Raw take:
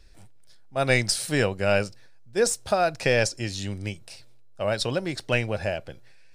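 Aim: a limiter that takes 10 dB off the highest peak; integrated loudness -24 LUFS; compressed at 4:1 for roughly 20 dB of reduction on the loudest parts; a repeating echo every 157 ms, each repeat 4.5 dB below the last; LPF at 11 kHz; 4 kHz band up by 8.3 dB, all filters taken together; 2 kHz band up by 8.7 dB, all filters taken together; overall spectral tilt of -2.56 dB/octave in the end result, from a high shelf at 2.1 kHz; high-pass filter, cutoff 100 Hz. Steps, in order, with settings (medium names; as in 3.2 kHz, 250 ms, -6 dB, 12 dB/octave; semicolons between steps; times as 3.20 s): high-pass 100 Hz; low-pass 11 kHz; peaking EQ 2 kHz +6.5 dB; treble shelf 2.1 kHz +5.5 dB; peaking EQ 4 kHz +3.5 dB; compression 4:1, threshold -36 dBFS; peak limiter -27.5 dBFS; feedback delay 157 ms, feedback 60%, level -4.5 dB; trim +14.5 dB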